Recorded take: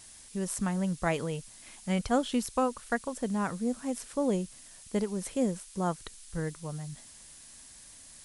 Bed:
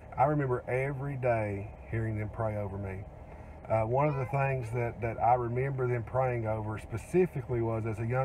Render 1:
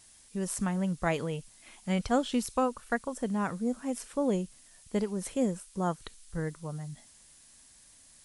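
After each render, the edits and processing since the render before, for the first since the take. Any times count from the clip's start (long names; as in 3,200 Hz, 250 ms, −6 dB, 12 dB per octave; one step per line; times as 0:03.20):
noise reduction from a noise print 6 dB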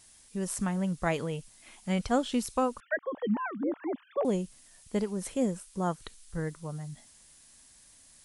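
0:02.80–0:04.25: three sine waves on the formant tracks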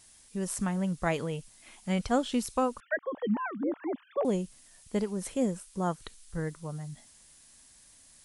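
no processing that can be heard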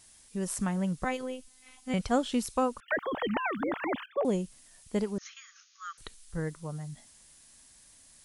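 0:01.04–0:01.94: phases set to zero 256 Hz
0:02.88–0:04.06: every bin compressed towards the loudest bin 2 to 1
0:05.18–0:05.98: linear-phase brick-wall band-pass 1,100–6,900 Hz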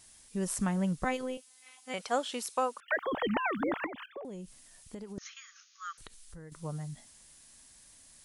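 0:01.37–0:02.99: high-pass filter 510 Hz
0:03.86–0:05.18: downward compressor 10 to 1, threshold −39 dBFS
0:05.97–0:06.52: downward compressor, threshold −45 dBFS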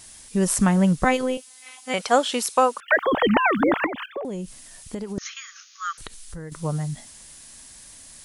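level +12 dB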